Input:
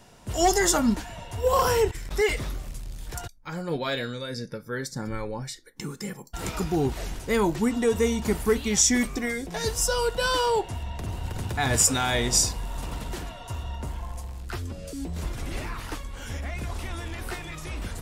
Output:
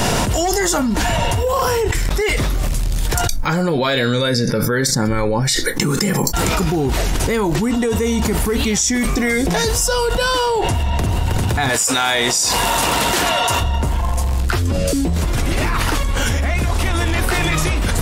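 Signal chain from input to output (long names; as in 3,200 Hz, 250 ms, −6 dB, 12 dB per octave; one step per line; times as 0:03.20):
0:11.69–0:13.61: high-pass filter 670 Hz 6 dB per octave
envelope flattener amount 100%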